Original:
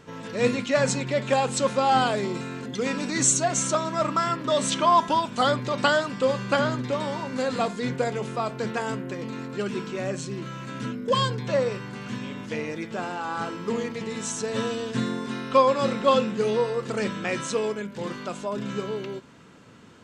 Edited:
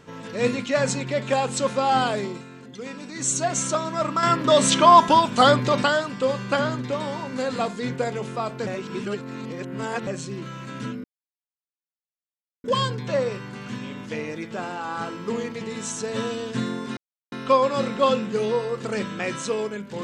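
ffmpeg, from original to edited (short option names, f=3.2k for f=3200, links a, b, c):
-filter_complex "[0:a]asplit=9[a][b][c][d][e][f][g][h][i];[a]atrim=end=2.44,asetpts=PTS-STARTPTS,afade=t=out:st=2.19:d=0.25:silence=0.375837[j];[b]atrim=start=2.44:end=3.18,asetpts=PTS-STARTPTS,volume=-8.5dB[k];[c]atrim=start=3.18:end=4.232,asetpts=PTS-STARTPTS,afade=t=in:d=0.25:silence=0.375837[l];[d]atrim=start=4.228:end=5.832,asetpts=PTS-STARTPTS,volume=6.5dB[m];[e]atrim=start=5.828:end=8.672[n];[f]atrim=start=8.668:end=10.072,asetpts=PTS-STARTPTS,areverse[o];[g]atrim=start=10.068:end=11.04,asetpts=PTS-STARTPTS,afade=t=out:st=0.968:d=0.004:c=hsin,apad=pad_dur=1.6[p];[h]atrim=start=11.04:end=15.37,asetpts=PTS-STARTPTS,afade=t=in:d=0.004:c=hsin,afade=t=out:st=4.326:d=0.004:c=hsin,apad=pad_dur=0.35[q];[i]atrim=start=15.37,asetpts=PTS-STARTPTS,afade=t=in:d=0.004:c=hsin[r];[j][k][l]concat=n=3:v=0:a=1[s];[s][m]acrossfade=d=0.004:c1=hsin:c2=hsin[t];[t][n]acrossfade=d=0.004:c1=hsin:c2=hsin[u];[u][o]acrossfade=d=0.004:c1=hsin:c2=hsin[v];[p][q][r]concat=n=3:v=0:a=1[w];[v][w]acrossfade=d=0.004:c1=hsin:c2=hsin"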